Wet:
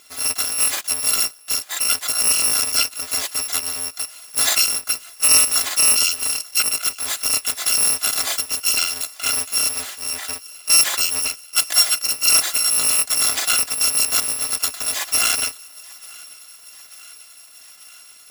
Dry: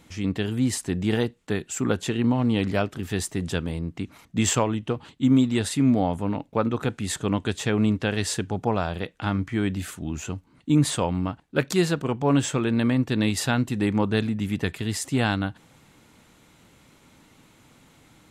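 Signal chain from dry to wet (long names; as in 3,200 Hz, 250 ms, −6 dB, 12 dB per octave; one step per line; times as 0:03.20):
samples in bit-reversed order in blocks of 256 samples
meter weighting curve A
on a send: feedback echo with a high-pass in the loop 889 ms, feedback 75%, high-pass 570 Hz, level −23.5 dB
on the sum: level +8 dB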